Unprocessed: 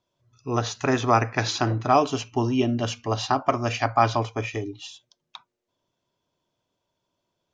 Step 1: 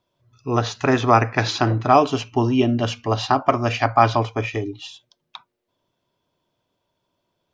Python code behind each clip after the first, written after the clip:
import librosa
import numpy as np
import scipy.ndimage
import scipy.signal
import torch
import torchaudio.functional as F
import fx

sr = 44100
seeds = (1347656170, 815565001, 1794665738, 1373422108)

y = fx.peak_eq(x, sr, hz=6600.0, db=-6.5, octaves=0.72)
y = y * librosa.db_to_amplitude(4.5)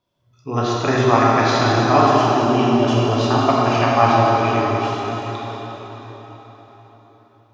y = fx.rev_plate(x, sr, seeds[0], rt60_s=4.8, hf_ratio=0.75, predelay_ms=0, drr_db=-6.0)
y = y * librosa.db_to_amplitude(-3.5)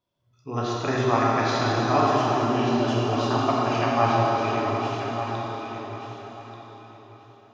y = fx.echo_feedback(x, sr, ms=1186, feedback_pct=18, wet_db=-10.0)
y = y * librosa.db_to_amplitude(-7.0)